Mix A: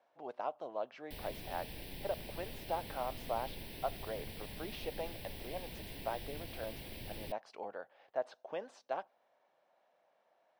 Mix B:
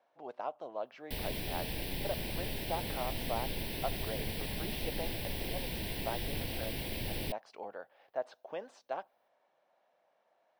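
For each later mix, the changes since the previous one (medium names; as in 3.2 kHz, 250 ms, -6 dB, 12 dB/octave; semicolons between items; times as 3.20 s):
background +9.0 dB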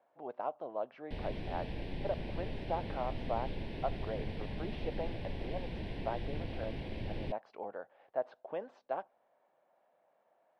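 speech +3.5 dB; master: add tape spacing loss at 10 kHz 32 dB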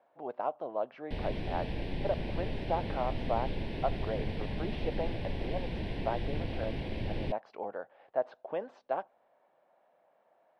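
speech +4.0 dB; background +4.5 dB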